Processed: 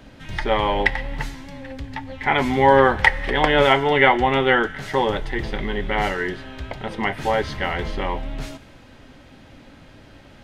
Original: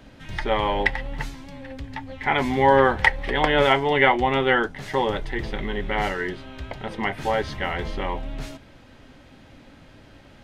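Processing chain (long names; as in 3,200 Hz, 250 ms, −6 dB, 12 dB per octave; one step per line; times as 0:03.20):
on a send: high-pass filter 1,100 Hz + convolution reverb RT60 1.8 s, pre-delay 5 ms, DRR 16 dB
on the sum: level +2.5 dB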